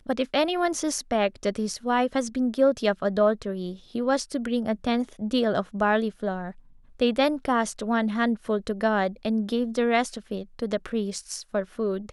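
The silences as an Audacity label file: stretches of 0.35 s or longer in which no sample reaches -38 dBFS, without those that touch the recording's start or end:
6.510000	7.000000	silence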